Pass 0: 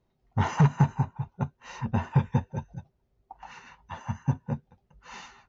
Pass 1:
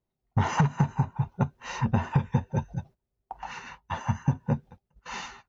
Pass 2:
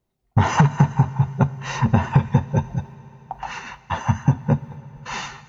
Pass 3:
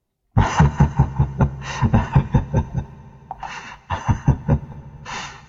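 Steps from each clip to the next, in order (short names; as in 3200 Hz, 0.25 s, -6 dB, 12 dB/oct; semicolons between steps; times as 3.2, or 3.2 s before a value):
gate -53 dBFS, range -18 dB; compressor 6:1, threshold -27 dBFS, peak gain reduction 12 dB; gain +7 dB
reverb RT60 4.6 s, pre-delay 4 ms, DRR 16.5 dB; gain +7.5 dB
octaver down 1 oct, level -5 dB; Vorbis 64 kbps 44100 Hz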